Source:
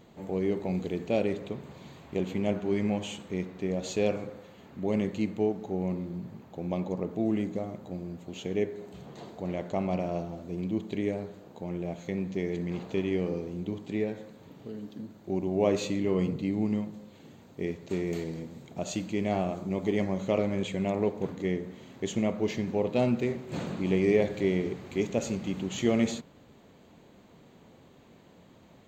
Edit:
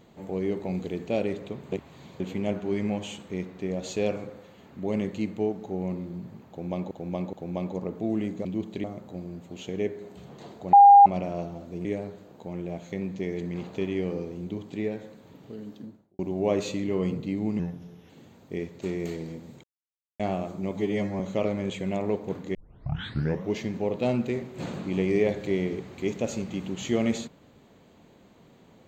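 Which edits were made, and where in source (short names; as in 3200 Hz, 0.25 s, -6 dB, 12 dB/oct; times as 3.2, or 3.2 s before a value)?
1.72–2.2 reverse
6.49–6.91 loop, 3 plays
9.5–9.83 bleep 806 Hz -8.5 dBFS
10.62–11.01 move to 7.61
14.9–15.35 studio fade out
16.75–17.17 speed 83%
18.71–19.27 mute
19.85–20.13 stretch 1.5×
21.48 tape start 0.99 s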